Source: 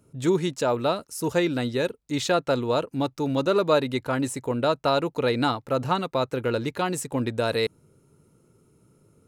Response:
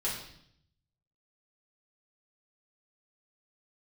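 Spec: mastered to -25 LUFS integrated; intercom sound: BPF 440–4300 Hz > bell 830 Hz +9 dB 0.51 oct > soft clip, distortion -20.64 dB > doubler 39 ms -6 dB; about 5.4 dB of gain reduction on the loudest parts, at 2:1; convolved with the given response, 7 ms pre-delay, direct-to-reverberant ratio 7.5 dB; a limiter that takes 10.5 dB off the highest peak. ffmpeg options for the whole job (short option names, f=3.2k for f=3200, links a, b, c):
-filter_complex "[0:a]acompressor=threshold=-27dB:ratio=2,alimiter=level_in=0.5dB:limit=-24dB:level=0:latency=1,volume=-0.5dB,asplit=2[a][b];[1:a]atrim=start_sample=2205,adelay=7[c];[b][c]afir=irnorm=-1:irlink=0,volume=-13dB[d];[a][d]amix=inputs=2:normalize=0,highpass=440,lowpass=4.3k,equalizer=f=830:t=o:w=0.51:g=9,asoftclip=threshold=-23dB,asplit=2[e][f];[f]adelay=39,volume=-6dB[g];[e][g]amix=inputs=2:normalize=0,volume=10dB"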